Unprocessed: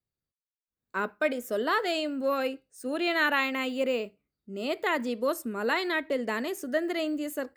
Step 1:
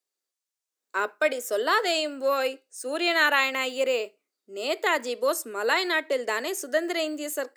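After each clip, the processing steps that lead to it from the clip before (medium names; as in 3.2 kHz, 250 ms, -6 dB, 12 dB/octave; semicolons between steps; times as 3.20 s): high-pass 350 Hz 24 dB/octave; peaking EQ 6.9 kHz +8 dB 1.3 oct; trim +3.5 dB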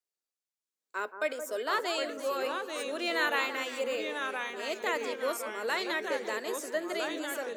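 echo whose repeats swap between lows and highs 173 ms, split 1.4 kHz, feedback 55%, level -9 dB; ever faster or slower copies 612 ms, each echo -2 st, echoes 2, each echo -6 dB; trim -8 dB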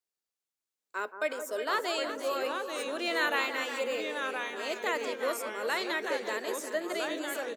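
delay 365 ms -11 dB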